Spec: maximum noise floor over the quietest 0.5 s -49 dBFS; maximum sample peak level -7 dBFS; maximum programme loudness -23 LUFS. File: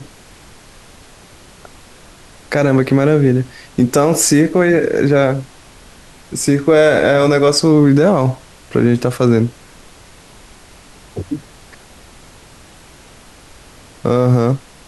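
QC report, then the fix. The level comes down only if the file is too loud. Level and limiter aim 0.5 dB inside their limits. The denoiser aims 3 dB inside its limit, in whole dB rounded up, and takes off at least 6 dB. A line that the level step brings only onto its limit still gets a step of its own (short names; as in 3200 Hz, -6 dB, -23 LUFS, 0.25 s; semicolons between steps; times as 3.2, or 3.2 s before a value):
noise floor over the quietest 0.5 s -42 dBFS: fail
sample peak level -2.0 dBFS: fail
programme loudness -14.0 LUFS: fail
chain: gain -9.5 dB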